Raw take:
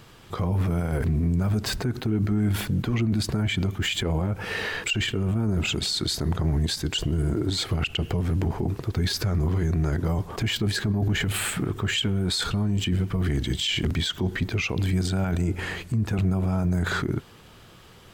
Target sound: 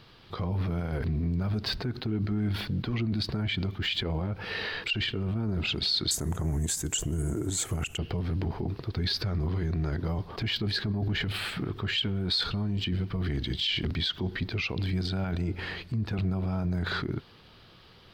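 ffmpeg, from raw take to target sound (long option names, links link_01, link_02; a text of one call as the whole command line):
ffmpeg -i in.wav -af "asetnsamples=nb_out_samples=441:pad=0,asendcmd='6.11 highshelf g 7.5;7.98 highshelf g -8.5',highshelf=frequency=5700:width_type=q:width=3:gain=-9,volume=-5.5dB" out.wav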